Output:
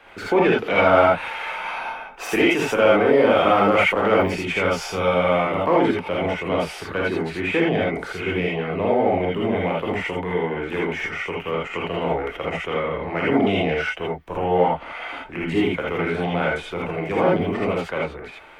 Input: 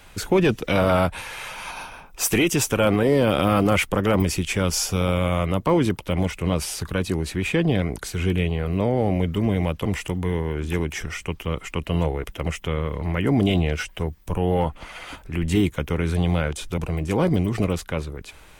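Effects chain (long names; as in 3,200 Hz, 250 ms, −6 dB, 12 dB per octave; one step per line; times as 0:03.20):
three-way crossover with the lows and the highs turned down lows −18 dB, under 280 Hz, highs −22 dB, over 3,000 Hz
in parallel at −11 dB: soft clipping −24 dBFS, distortion −9 dB
on the sum: reverb whose tail is shaped and stops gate 100 ms rising, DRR −4 dB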